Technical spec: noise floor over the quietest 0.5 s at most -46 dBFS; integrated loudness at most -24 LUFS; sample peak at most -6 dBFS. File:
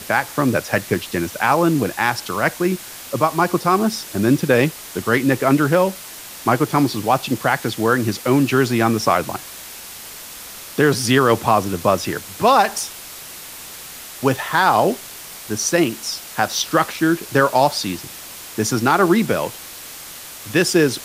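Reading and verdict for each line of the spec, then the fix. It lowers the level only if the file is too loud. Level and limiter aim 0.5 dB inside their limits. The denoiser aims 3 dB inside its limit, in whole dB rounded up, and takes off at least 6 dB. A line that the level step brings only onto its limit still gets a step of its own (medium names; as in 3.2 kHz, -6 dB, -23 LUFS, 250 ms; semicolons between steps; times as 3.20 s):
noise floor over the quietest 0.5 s -36 dBFS: fail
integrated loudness -18.5 LUFS: fail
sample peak -2.5 dBFS: fail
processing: noise reduction 7 dB, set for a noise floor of -36 dBFS; trim -6 dB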